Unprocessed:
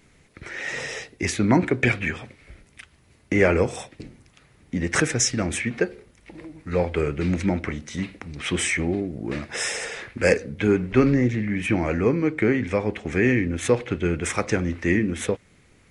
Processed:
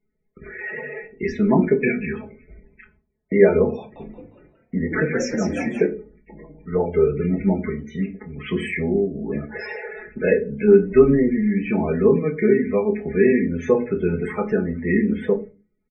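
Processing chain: low-pass 1.8 kHz 6 dB/octave; gate with hold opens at -43 dBFS; peaking EQ 420 Hz +5 dB 0.41 oct; comb 4.7 ms, depth 95%; loudest bins only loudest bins 32; 3.78–5.86 s: frequency-shifting echo 177 ms, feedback 31%, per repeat +70 Hz, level -6 dB; simulated room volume 120 m³, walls furnished, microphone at 0.81 m; trim -2.5 dB

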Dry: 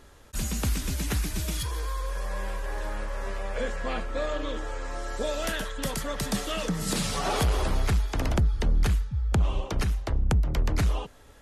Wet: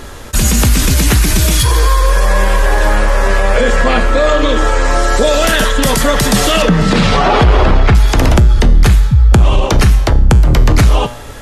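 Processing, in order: 6.62–7.95 s: low-pass 3 kHz 12 dB/octave; feedback comb 120 Hz, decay 0.6 s, harmonics all, mix 60%; loudness maximiser +31 dB; trim -1 dB

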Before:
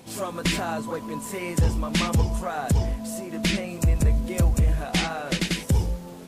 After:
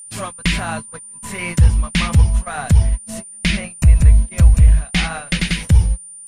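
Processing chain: FFT filter 170 Hz 0 dB, 320 Hz -7 dB, 2.1 kHz +14 dB; gate -24 dBFS, range -35 dB; RIAA curve playback; in parallel at 0 dB: compression, threshold -19 dBFS, peak gain reduction 18 dB; on the sum: whistle 9.2 kHz -28 dBFS; trim -6 dB

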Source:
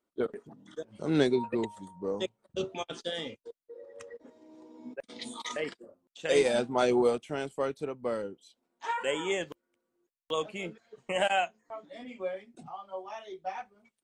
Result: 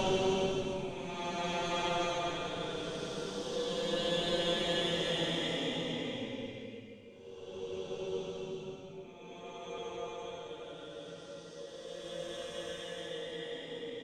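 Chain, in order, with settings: bass shelf 320 Hz +3.5 dB; delay 915 ms -9.5 dB; Chebyshev shaper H 4 -6 dB, 6 -19 dB, 7 -24 dB, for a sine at -9.5 dBFS; Paulstretch 8.9×, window 0.25 s, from 2.60 s; trim +4.5 dB

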